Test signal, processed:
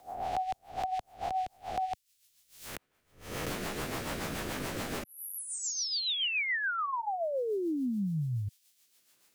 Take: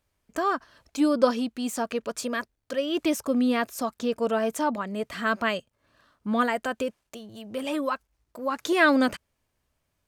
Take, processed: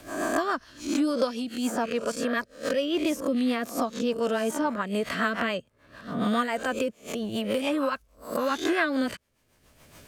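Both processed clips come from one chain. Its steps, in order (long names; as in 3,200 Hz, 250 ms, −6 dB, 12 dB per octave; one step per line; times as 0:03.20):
peak hold with a rise ahead of every peak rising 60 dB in 0.40 s
rotating-speaker cabinet horn 7 Hz
multiband upward and downward compressor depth 100%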